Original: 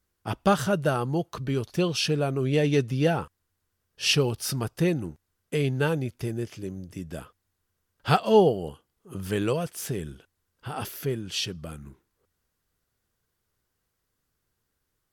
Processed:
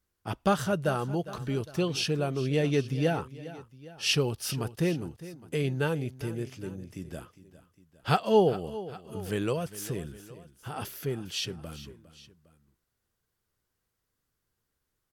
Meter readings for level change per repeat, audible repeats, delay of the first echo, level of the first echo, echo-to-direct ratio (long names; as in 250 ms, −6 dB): −5.0 dB, 2, 406 ms, −16.0 dB, −15.0 dB